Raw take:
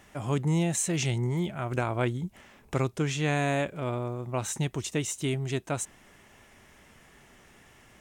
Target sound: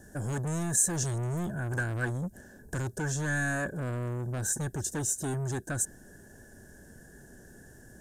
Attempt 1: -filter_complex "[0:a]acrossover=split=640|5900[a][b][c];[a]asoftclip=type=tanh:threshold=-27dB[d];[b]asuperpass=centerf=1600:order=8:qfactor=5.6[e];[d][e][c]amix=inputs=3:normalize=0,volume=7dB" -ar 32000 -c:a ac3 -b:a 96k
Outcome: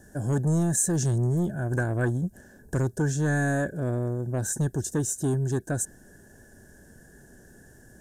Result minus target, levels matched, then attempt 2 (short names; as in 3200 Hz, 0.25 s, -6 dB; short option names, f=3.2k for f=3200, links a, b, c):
soft clip: distortion -7 dB
-filter_complex "[0:a]acrossover=split=640|5900[a][b][c];[a]asoftclip=type=tanh:threshold=-37.5dB[d];[b]asuperpass=centerf=1600:order=8:qfactor=5.6[e];[d][e][c]amix=inputs=3:normalize=0,volume=7dB" -ar 32000 -c:a ac3 -b:a 96k